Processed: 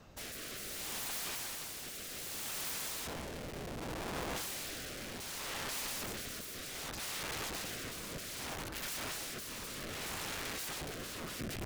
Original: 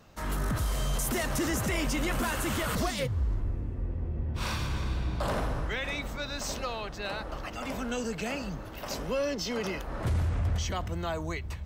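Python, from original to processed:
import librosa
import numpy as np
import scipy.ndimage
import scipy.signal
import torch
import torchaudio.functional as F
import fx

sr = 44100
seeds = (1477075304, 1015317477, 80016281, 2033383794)

y = (np.mod(10.0 ** (36.0 / 20.0) * x + 1.0, 2.0) - 1.0) / 10.0 ** (36.0 / 20.0)
y = fx.rotary(y, sr, hz=0.65)
y = y * librosa.db_to_amplitude(2.0)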